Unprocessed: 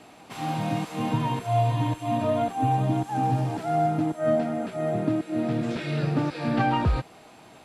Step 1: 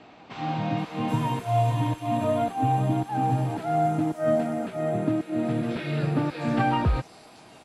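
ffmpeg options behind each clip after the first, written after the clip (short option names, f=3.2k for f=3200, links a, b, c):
-filter_complex "[0:a]acrossover=split=5300[a][b];[b]adelay=780[c];[a][c]amix=inputs=2:normalize=0"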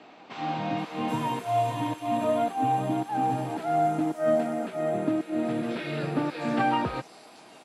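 -af "highpass=220"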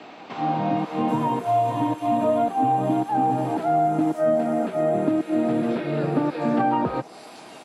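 -filter_complex "[0:a]acrossover=split=130|1200[a][b][c];[a]acompressor=threshold=-52dB:ratio=4[d];[b]acompressor=threshold=-26dB:ratio=4[e];[c]acompressor=threshold=-52dB:ratio=4[f];[d][e][f]amix=inputs=3:normalize=0,volume=8dB"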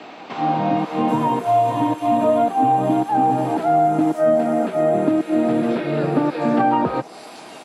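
-af "lowshelf=f=100:g=-7,volume=4.5dB"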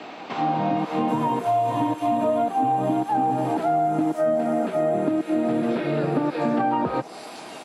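-af "acompressor=threshold=-21dB:ratio=2.5"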